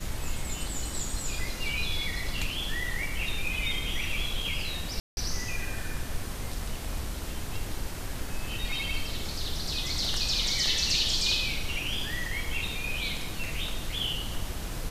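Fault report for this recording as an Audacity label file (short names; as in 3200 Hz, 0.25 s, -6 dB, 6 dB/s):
5.000000	5.170000	gap 0.171 s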